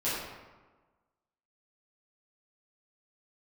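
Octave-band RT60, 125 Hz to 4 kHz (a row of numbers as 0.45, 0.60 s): 1.3, 1.4, 1.3, 1.3, 1.0, 0.75 s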